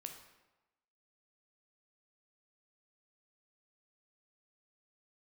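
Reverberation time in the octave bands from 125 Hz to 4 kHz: 0.95, 1.0, 1.0, 1.1, 0.90, 0.75 seconds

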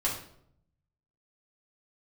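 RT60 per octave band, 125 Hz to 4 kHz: 1.2, 0.90, 0.75, 0.60, 0.50, 0.50 seconds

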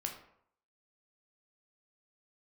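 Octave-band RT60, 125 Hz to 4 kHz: 0.65, 0.60, 0.65, 0.70, 0.55, 0.40 seconds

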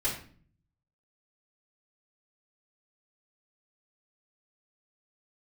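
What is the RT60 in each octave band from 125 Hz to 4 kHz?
1.0, 0.75, 0.50, 0.40, 0.40, 0.35 seconds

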